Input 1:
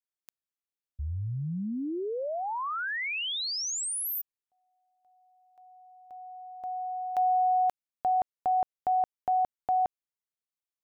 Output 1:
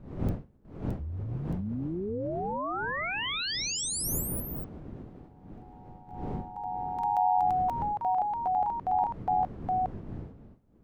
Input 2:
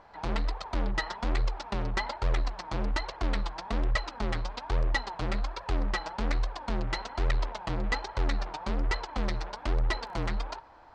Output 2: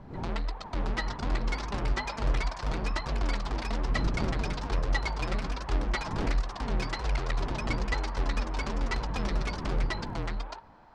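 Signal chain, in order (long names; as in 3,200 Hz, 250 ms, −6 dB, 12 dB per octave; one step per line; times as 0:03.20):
wind on the microphone 220 Hz −40 dBFS
delay with pitch and tempo change per echo 649 ms, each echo +2 semitones, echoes 2
level −2.5 dB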